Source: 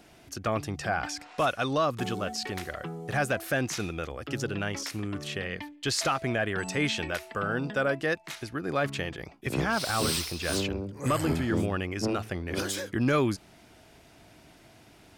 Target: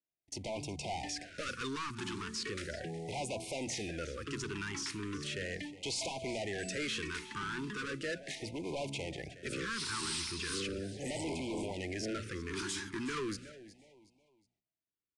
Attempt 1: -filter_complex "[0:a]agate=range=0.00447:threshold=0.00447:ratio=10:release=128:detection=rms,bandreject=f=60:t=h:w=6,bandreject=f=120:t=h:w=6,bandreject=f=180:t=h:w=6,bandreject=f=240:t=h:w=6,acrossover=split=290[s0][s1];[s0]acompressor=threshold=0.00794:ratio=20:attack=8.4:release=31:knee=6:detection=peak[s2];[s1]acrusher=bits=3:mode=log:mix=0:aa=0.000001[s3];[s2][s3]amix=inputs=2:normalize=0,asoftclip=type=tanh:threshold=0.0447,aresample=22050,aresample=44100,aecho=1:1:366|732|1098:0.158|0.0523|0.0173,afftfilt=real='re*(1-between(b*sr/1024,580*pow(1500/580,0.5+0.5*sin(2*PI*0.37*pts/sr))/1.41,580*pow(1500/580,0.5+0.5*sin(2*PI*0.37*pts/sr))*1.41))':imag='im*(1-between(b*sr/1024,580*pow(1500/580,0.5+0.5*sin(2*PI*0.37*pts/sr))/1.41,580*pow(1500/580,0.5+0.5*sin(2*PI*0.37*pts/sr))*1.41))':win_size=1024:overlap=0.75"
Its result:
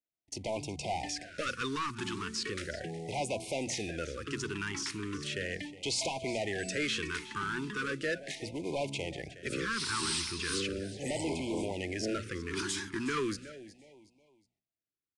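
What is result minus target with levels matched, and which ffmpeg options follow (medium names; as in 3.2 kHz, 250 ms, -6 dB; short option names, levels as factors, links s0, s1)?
saturation: distortion -5 dB
-filter_complex "[0:a]agate=range=0.00447:threshold=0.00447:ratio=10:release=128:detection=rms,bandreject=f=60:t=h:w=6,bandreject=f=120:t=h:w=6,bandreject=f=180:t=h:w=6,bandreject=f=240:t=h:w=6,acrossover=split=290[s0][s1];[s0]acompressor=threshold=0.00794:ratio=20:attack=8.4:release=31:knee=6:detection=peak[s2];[s1]acrusher=bits=3:mode=log:mix=0:aa=0.000001[s3];[s2][s3]amix=inputs=2:normalize=0,asoftclip=type=tanh:threshold=0.02,aresample=22050,aresample=44100,aecho=1:1:366|732|1098:0.158|0.0523|0.0173,afftfilt=real='re*(1-between(b*sr/1024,580*pow(1500/580,0.5+0.5*sin(2*PI*0.37*pts/sr))/1.41,580*pow(1500/580,0.5+0.5*sin(2*PI*0.37*pts/sr))*1.41))':imag='im*(1-between(b*sr/1024,580*pow(1500/580,0.5+0.5*sin(2*PI*0.37*pts/sr))/1.41,580*pow(1500/580,0.5+0.5*sin(2*PI*0.37*pts/sr))*1.41))':win_size=1024:overlap=0.75"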